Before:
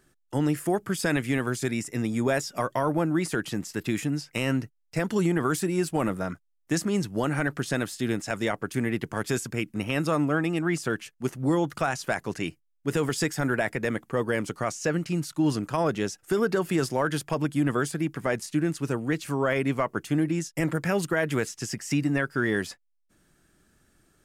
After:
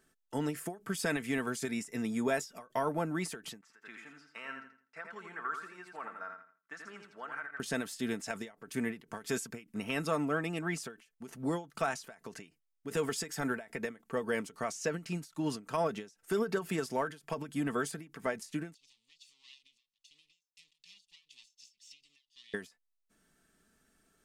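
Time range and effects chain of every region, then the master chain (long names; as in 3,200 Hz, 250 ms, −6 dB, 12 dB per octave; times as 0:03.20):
0:03.61–0:07.60: resonant band-pass 1,400 Hz, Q 2.5 + repeating echo 83 ms, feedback 31%, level −6 dB
0:18.74–0:22.54: lower of the sound and its delayed copy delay 1.1 ms + inverse Chebyshev high-pass filter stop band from 1,700 Hz + high-frequency loss of the air 140 metres
whole clip: low-shelf EQ 170 Hz −7 dB; comb filter 4.5 ms, depth 45%; every ending faded ahead of time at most 200 dB per second; level −6 dB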